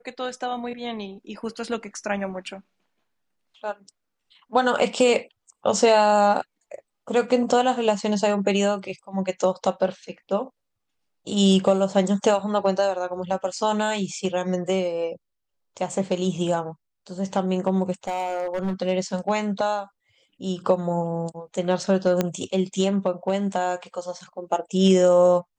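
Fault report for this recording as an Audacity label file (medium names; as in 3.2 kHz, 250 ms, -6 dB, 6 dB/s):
18.070000	18.730000	clipped -22 dBFS
22.210000	22.210000	pop -8 dBFS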